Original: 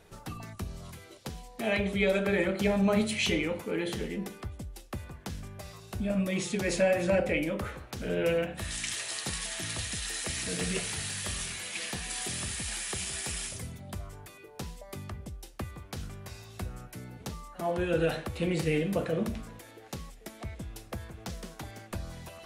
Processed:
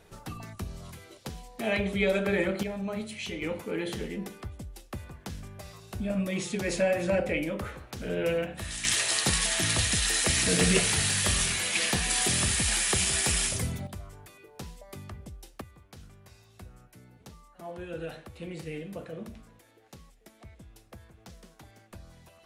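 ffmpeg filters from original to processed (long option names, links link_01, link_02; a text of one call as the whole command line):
ffmpeg -i in.wav -af "asetnsamples=nb_out_samples=441:pad=0,asendcmd='2.63 volume volume -8.5dB;3.42 volume volume -0.5dB;8.85 volume volume 9dB;13.87 volume volume -2dB;15.61 volume volume -10dB',volume=0.5dB" out.wav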